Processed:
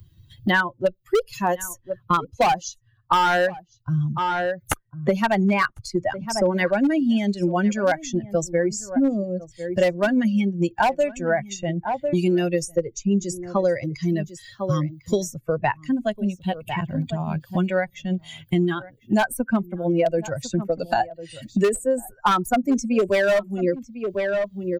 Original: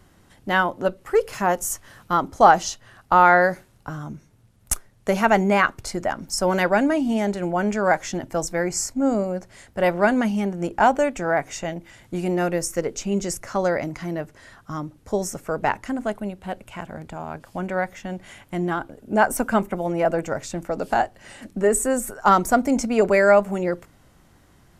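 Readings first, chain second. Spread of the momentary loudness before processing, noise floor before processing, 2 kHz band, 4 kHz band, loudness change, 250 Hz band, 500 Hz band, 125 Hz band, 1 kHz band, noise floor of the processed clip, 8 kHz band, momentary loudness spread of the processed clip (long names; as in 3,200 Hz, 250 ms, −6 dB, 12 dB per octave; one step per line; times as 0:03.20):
17 LU, −56 dBFS, −2.0 dB, +2.0 dB, −1.0 dB, +2.0 dB, −0.5 dB, +4.5 dB, −3.5 dB, −59 dBFS, −4.5 dB, 8 LU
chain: spectral dynamics exaggerated over time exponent 2
dynamic equaliser 3,800 Hz, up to −6 dB, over −45 dBFS, Q 1.1
gain into a clipping stage and back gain 17.5 dB
slap from a distant wall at 180 metres, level −21 dB
multiband upward and downward compressor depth 100%
level +6 dB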